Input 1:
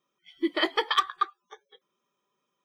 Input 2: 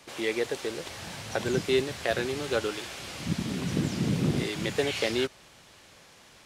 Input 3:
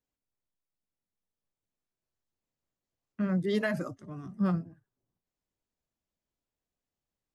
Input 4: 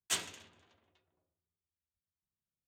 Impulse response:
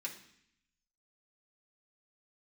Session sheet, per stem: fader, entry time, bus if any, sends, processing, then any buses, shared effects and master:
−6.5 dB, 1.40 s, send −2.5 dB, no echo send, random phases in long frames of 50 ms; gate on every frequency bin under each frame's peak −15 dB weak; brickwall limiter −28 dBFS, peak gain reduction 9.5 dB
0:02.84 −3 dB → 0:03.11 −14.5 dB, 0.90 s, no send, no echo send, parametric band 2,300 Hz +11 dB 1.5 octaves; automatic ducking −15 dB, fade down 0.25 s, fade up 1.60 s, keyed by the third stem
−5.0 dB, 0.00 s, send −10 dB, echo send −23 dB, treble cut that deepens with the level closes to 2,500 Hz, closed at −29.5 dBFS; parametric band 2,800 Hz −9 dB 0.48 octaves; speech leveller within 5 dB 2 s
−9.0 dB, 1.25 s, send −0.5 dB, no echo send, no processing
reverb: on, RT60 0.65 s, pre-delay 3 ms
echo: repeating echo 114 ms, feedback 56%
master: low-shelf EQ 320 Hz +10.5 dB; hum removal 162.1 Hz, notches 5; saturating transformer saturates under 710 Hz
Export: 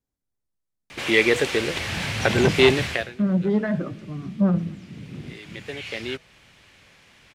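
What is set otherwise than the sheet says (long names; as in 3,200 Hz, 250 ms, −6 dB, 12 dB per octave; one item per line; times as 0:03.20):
stem 2 −3.0 dB → +5.0 dB
stem 3 −5.0 dB → +1.5 dB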